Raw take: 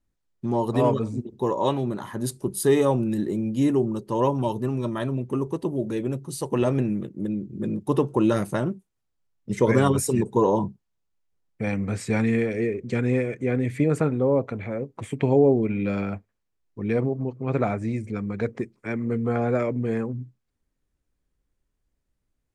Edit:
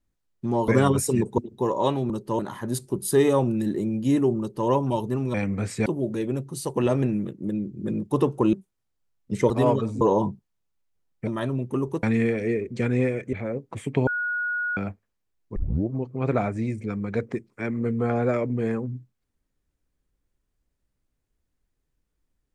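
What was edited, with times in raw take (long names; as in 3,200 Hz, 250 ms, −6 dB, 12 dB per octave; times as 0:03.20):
0:00.68–0:01.19: swap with 0:09.68–0:10.38
0:03.91–0:04.20: duplicate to 0:01.91
0:04.86–0:05.62: swap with 0:11.64–0:12.16
0:08.29–0:08.71: remove
0:13.46–0:14.59: remove
0:15.33–0:16.03: beep over 1,450 Hz −24 dBFS
0:16.82: tape start 0.35 s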